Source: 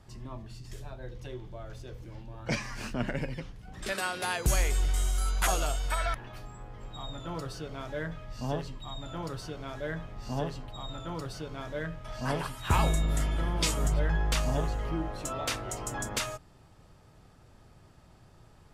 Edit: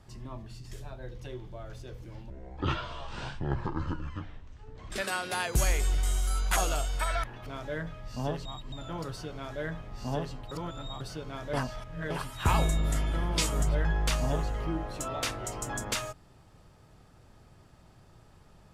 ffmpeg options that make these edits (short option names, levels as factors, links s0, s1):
-filter_complex "[0:a]asplit=10[s0][s1][s2][s3][s4][s5][s6][s7][s8][s9];[s0]atrim=end=2.304[s10];[s1]atrim=start=2.3:end=3.81,asetpts=PTS-STARTPTS,asetrate=25578,aresample=44100,atrim=end_sample=114812,asetpts=PTS-STARTPTS[s11];[s2]atrim=start=3.806:end=6.372[s12];[s3]atrim=start=7.708:end=8.702[s13];[s4]atrim=start=8.698:end=8.972,asetpts=PTS-STARTPTS,areverse[s14];[s5]atrim=start=8.968:end=10.762[s15];[s6]atrim=start=10.758:end=11.252,asetpts=PTS-STARTPTS,areverse[s16];[s7]atrim=start=11.248:end=11.782[s17];[s8]atrim=start=11.778:end=12.352,asetpts=PTS-STARTPTS,areverse[s18];[s9]atrim=start=12.348[s19];[s10][s11]acrossfade=d=0.004:c1=hsin:c2=hsin[s20];[s20][s12]acrossfade=d=0.004:c1=hsin:c2=hsin[s21];[s21][s13]acrossfade=d=0.004:c1=hsin:c2=hsin[s22];[s22][s14]acrossfade=d=0.004:c1=hsin:c2=hsin[s23];[s23][s15]acrossfade=d=0.004:c1=hsin:c2=hsin[s24];[s24][s16]acrossfade=d=0.004:c1=hsin:c2=hsin[s25];[s25][s17]acrossfade=d=0.004:c1=hsin:c2=hsin[s26];[s26][s18]acrossfade=d=0.004:c1=hsin:c2=hsin[s27];[s27][s19]acrossfade=d=0.004:c1=hsin:c2=hsin"